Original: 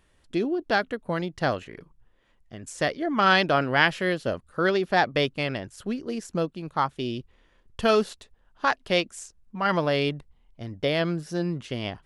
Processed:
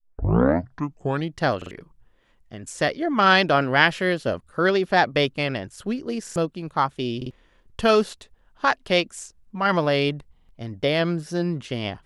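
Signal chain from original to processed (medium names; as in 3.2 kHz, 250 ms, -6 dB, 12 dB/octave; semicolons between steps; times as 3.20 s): tape start-up on the opening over 1.37 s; buffer glitch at 1.57/6.22/7.17/10.35 s, samples 2048, times 2; trim +3 dB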